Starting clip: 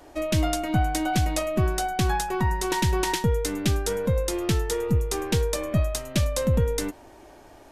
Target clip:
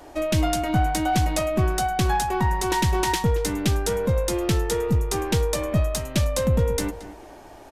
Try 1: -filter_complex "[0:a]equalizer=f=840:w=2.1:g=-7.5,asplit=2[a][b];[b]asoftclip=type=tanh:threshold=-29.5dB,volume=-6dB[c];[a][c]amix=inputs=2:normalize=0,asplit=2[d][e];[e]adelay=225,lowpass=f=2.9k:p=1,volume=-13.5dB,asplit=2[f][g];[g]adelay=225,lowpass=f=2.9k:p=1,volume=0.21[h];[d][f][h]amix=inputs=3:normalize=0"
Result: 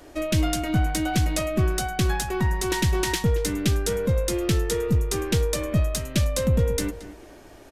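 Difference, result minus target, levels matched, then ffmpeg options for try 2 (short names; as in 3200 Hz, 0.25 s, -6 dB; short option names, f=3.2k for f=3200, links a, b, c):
1000 Hz band -6.5 dB
-filter_complex "[0:a]equalizer=f=840:w=2.1:g=2.5,asplit=2[a][b];[b]asoftclip=type=tanh:threshold=-29.5dB,volume=-6dB[c];[a][c]amix=inputs=2:normalize=0,asplit=2[d][e];[e]adelay=225,lowpass=f=2.9k:p=1,volume=-13.5dB,asplit=2[f][g];[g]adelay=225,lowpass=f=2.9k:p=1,volume=0.21[h];[d][f][h]amix=inputs=3:normalize=0"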